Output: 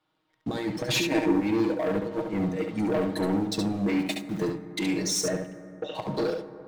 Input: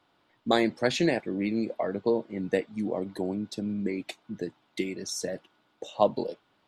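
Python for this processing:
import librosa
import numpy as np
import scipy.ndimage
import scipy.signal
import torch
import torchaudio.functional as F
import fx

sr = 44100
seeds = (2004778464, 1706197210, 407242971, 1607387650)

y = x + 0.8 * np.pad(x, (int(6.4 * sr / 1000.0), 0))[:len(x)]
y = fx.over_compress(y, sr, threshold_db=-27.0, ratio=-0.5)
y = fx.leveller(y, sr, passes=3)
y = fx.small_body(y, sr, hz=(310.0, 930.0, 2400.0), ring_ms=45, db=fx.line((0.91, 13.0), (1.32, 9.0)), at=(0.91, 1.32), fade=0.02)
y = fx.sample_gate(y, sr, floor_db=-36.0, at=(3.99, 4.44))
y = fx.air_absorb(y, sr, metres=300.0, at=(5.21, 5.95))
y = y + 10.0 ** (-5.5 / 20.0) * np.pad(y, (int(70 * sr / 1000.0), 0))[:len(y)]
y = fx.rev_fdn(y, sr, rt60_s=3.2, lf_ratio=1.0, hf_ratio=0.3, size_ms=51.0, drr_db=11.0)
y = y * librosa.db_to_amplitude(-7.0)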